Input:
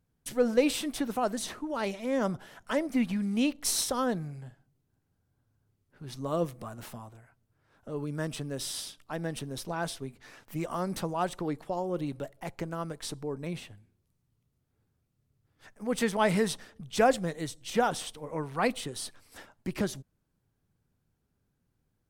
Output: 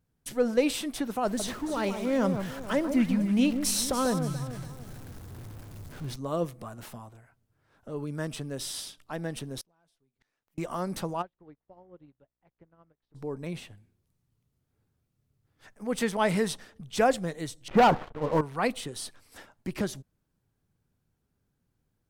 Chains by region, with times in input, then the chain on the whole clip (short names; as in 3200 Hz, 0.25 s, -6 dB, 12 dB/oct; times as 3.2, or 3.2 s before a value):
1.25–6.16 zero-crossing step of -42.5 dBFS + low shelf 180 Hz +7 dB + echo with dull and thin repeats by turns 0.144 s, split 1300 Hz, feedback 62%, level -7 dB
9.61–10.58 sample leveller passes 1 + compressor 1.5:1, threshold -52 dBFS + flipped gate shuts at -44 dBFS, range -31 dB
11.21–13.14 buzz 60 Hz, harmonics 37, -52 dBFS -5 dB/oct + air absorption 300 m + upward expander 2.5:1, over -46 dBFS
17.68–18.41 LPF 1500 Hz 24 dB/oct + dynamic EQ 920 Hz, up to +4 dB, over -38 dBFS, Q 2 + sample leveller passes 3
whole clip: dry